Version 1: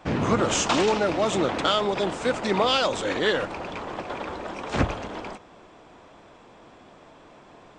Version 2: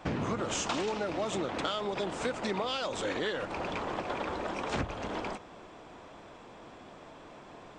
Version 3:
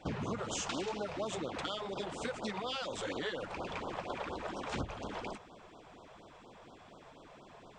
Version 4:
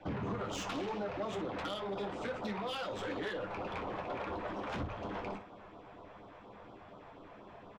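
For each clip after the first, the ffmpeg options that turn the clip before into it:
ffmpeg -i in.wav -af "acompressor=threshold=-30dB:ratio=6" out.wav
ffmpeg -i in.wav -af "afftfilt=real='re*(1-between(b*sr/1024,240*pow(2200/240,0.5+0.5*sin(2*PI*4.2*pts/sr))/1.41,240*pow(2200/240,0.5+0.5*sin(2*PI*4.2*pts/sr))*1.41))':imag='im*(1-between(b*sr/1024,240*pow(2200/240,0.5+0.5*sin(2*PI*4.2*pts/sr))/1.41,240*pow(2200/240,0.5+0.5*sin(2*PI*4.2*pts/sr))*1.41))':win_size=1024:overlap=0.75,volume=-4dB" out.wav
ffmpeg -i in.wav -filter_complex "[0:a]aecho=1:1:10|25|61:0.501|0.376|0.282,acrossover=split=230|410|2400[link_01][link_02][link_03][link_04];[link_04]adynamicsmooth=sensitivity=5.5:basefreq=3300[link_05];[link_01][link_02][link_03][link_05]amix=inputs=4:normalize=0,asoftclip=type=tanh:threshold=-32.5dB,volume=1dB" out.wav

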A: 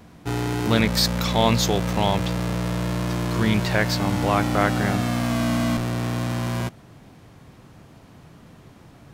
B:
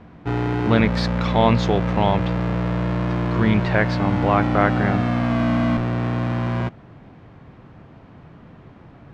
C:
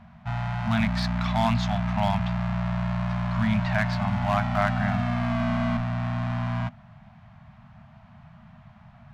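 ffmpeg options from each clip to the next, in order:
ffmpeg -i in.wav -af "lowpass=2300,volume=3dB" out.wav
ffmpeg -i in.wav -af "aeval=exprs='clip(val(0),-1,0.168)':channel_layout=same,aeval=exprs='0.891*(cos(1*acos(clip(val(0)/0.891,-1,1)))-cos(1*PI/2))+0.224*(cos(2*acos(clip(val(0)/0.891,-1,1)))-cos(2*PI/2))+0.112*(cos(3*acos(clip(val(0)/0.891,-1,1)))-cos(3*PI/2))':channel_layout=same,afftfilt=real='re*(1-between(b*sr/4096,240,600))':imag='im*(1-between(b*sr/4096,240,600))':win_size=4096:overlap=0.75" out.wav

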